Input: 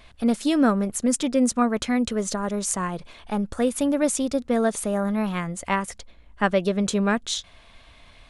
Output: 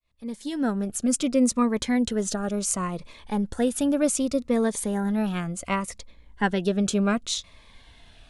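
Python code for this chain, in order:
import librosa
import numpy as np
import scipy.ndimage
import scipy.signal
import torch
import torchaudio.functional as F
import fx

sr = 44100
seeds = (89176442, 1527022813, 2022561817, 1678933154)

y = fx.fade_in_head(x, sr, length_s=1.18)
y = fx.notch_cascade(y, sr, direction='falling', hz=0.68)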